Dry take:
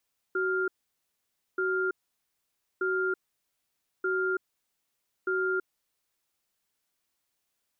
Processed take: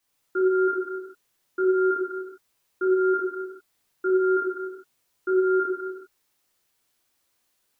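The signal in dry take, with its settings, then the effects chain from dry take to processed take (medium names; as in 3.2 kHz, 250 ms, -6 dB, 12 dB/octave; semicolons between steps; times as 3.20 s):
cadence 374 Hz, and 1.4 kHz, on 0.33 s, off 0.90 s, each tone -28 dBFS 5.64 s
gated-style reverb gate 480 ms falling, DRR -7 dB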